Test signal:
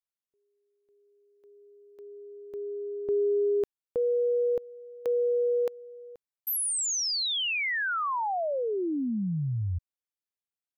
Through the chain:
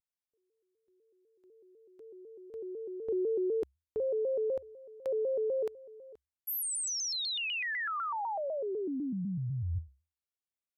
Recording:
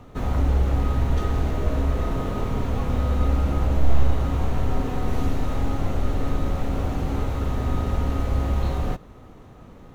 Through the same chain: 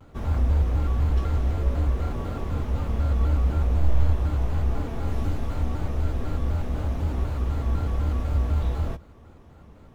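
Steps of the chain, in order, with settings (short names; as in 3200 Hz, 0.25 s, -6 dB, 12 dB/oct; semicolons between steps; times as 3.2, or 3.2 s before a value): bell 74 Hz +11.5 dB 0.26 oct; shaped vibrato square 4 Hz, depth 160 cents; gain -5.5 dB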